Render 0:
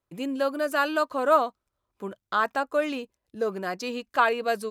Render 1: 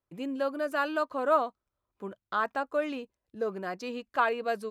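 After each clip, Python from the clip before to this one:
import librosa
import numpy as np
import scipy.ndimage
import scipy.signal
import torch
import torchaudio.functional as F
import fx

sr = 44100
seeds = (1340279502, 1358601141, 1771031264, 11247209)

y = fx.high_shelf(x, sr, hz=4100.0, db=-8.5)
y = y * librosa.db_to_amplitude(-4.0)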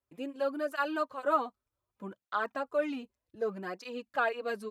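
y = fx.flanger_cancel(x, sr, hz=0.65, depth_ms=6.7)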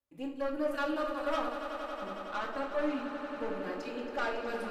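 y = fx.tube_stage(x, sr, drive_db=28.0, bias=0.45)
y = fx.echo_swell(y, sr, ms=92, loudest=5, wet_db=-12.0)
y = fx.room_shoebox(y, sr, seeds[0], volume_m3=670.0, walls='furnished', distance_m=2.4)
y = y * librosa.db_to_amplitude(-3.0)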